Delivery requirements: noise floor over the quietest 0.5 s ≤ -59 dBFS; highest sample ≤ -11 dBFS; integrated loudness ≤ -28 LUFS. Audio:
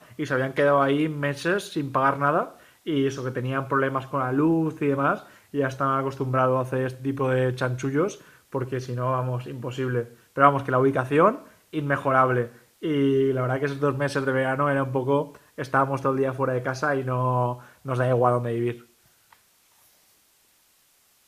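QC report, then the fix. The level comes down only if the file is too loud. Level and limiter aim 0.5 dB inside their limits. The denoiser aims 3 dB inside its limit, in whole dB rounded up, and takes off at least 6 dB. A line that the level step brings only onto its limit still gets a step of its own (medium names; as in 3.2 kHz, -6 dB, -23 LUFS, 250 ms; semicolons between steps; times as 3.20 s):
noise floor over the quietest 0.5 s -62 dBFS: pass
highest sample -2.0 dBFS: fail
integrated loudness -24.5 LUFS: fail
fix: trim -4 dB; peak limiter -11.5 dBFS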